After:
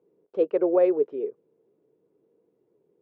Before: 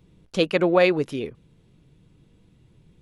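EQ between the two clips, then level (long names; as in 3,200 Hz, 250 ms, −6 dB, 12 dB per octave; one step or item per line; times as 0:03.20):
four-pole ladder band-pass 470 Hz, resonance 65%
+5.5 dB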